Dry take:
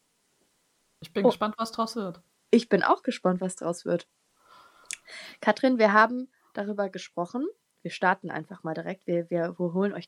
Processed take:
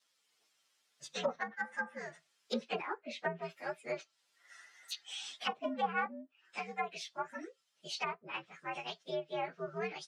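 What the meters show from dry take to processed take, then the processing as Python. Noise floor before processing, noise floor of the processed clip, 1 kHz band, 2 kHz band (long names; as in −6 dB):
−72 dBFS, −78 dBFS, −11.0 dB, −10.0 dB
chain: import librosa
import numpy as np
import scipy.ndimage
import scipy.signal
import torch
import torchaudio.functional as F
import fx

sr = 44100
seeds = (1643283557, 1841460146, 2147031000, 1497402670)

y = fx.partial_stretch(x, sr, pct=122)
y = fx.wow_flutter(y, sr, seeds[0], rate_hz=2.1, depth_cents=23.0)
y = scipy.signal.sosfilt(scipy.signal.butter(2, 4400.0, 'lowpass', fs=sr, output='sos'), y)
y = np.diff(y, prepend=0.0)
y = fx.env_lowpass_down(y, sr, base_hz=690.0, full_db=-41.5)
y = F.gain(torch.from_numpy(y), 13.5).numpy()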